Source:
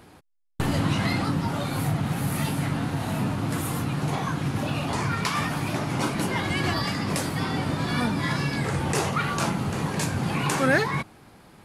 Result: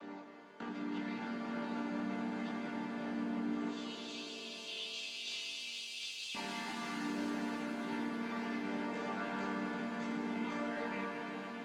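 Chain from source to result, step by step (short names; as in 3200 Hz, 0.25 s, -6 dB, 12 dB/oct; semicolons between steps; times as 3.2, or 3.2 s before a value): chord vocoder minor triad, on G3; 3.68–6.35 steep high-pass 2700 Hz 72 dB/oct; compressor, threshold -38 dBFS, peak gain reduction 20 dB; limiter -38 dBFS, peak gain reduction 12 dB; chorus voices 4, 0.26 Hz, delay 20 ms, depth 2.5 ms; overdrive pedal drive 12 dB, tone 4000 Hz, clips at -36 dBFS; air absorption 53 m; shimmer reverb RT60 3.9 s, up +7 st, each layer -8 dB, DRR 0 dB; gain +6 dB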